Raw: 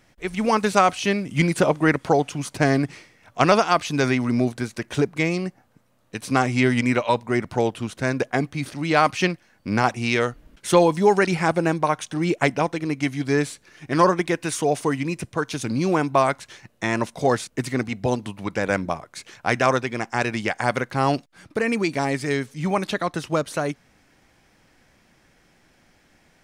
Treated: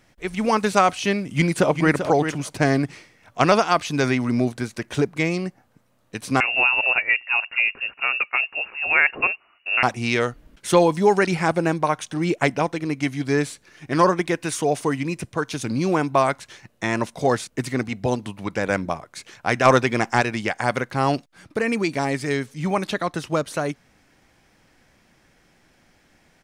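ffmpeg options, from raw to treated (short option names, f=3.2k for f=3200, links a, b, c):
-filter_complex "[0:a]asplit=2[a][b];[b]afade=t=in:st=1.21:d=0.01,afade=t=out:st=1.95:d=0.01,aecho=0:1:390|780:0.375837|0.0375837[c];[a][c]amix=inputs=2:normalize=0,asettb=1/sr,asplit=3[d][e][f];[d]atrim=end=6.404[g];[e]atrim=start=6.4:end=9.83,asetpts=PTS-STARTPTS,afade=t=in:d=0.004:c=qsin,afade=t=out:st=3.426:d=0.004:c=qsin,lowpass=f=2.5k:t=q:w=0.5098,lowpass=f=2.5k:t=q:w=0.6013,lowpass=f=2.5k:t=q:w=0.9,lowpass=f=2.5k:t=q:w=2.563,afreqshift=-2900[h];[f]atrim=start=9.826[i];[g][h]acrossfade=d=0.004:c1=hsin:c2=qsin[j];[j][i]acrossfade=d=0.004:c1=qsin:c2=hsin,asplit=3[k][l][m];[k]afade=t=out:st=19.64:d=0.02[n];[l]acontrast=53,afade=t=in:st=19.64:d=0.02,afade=t=out:st=20.2:d=0.02[o];[m]afade=t=in:st=20.2:d=0.02[p];[n][o][p]amix=inputs=3:normalize=0"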